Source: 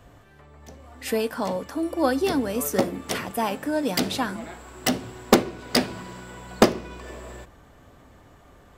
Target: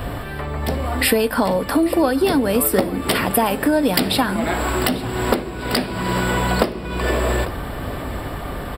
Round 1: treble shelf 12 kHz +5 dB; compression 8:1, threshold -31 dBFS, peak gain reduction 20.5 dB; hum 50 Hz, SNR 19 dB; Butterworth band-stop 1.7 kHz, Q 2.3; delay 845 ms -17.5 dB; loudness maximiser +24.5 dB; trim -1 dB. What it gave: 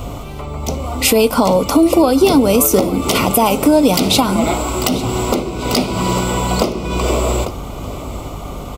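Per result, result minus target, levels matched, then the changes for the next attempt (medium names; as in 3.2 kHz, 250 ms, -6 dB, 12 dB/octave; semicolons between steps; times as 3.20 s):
2 kHz band -7.0 dB; compression: peak gain reduction -6.5 dB
change: Butterworth band-stop 6.4 kHz, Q 2.3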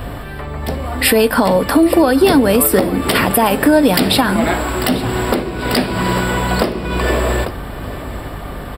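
compression: peak gain reduction -6.5 dB
change: compression 8:1, threshold -38.5 dBFS, peak gain reduction 27 dB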